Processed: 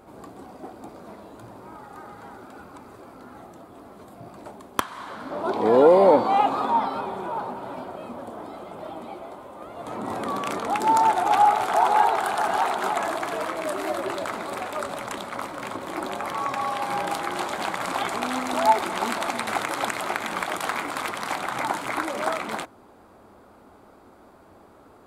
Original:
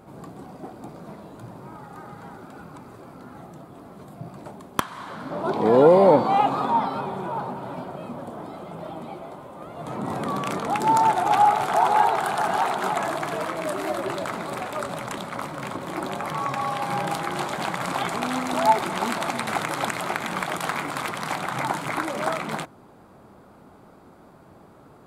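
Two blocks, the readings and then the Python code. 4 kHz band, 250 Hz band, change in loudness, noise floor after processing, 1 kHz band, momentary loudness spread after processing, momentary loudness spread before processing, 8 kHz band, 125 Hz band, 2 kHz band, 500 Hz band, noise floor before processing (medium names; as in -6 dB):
0.0 dB, -2.5 dB, -0.5 dB, -52 dBFS, 0.0 dB, 23 LU, 22 LU, 0.0 dB, -8.5 dB, 0.0 dB, -0.5 dB, -50 dBFS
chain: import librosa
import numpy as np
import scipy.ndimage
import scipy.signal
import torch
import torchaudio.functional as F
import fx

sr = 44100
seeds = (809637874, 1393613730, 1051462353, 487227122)

y = fx.peak_eq(x, sr, hz=150.0, db=-14.0, octaves=0.57)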